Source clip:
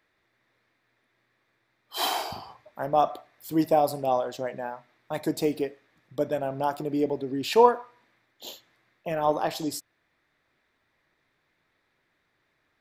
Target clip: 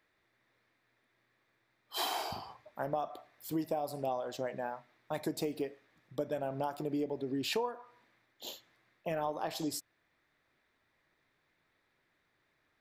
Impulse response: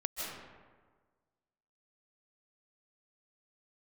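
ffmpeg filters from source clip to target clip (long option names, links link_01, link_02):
-af "acompressor=threshold=-27dB:ratio=16,volume=-3.5dB"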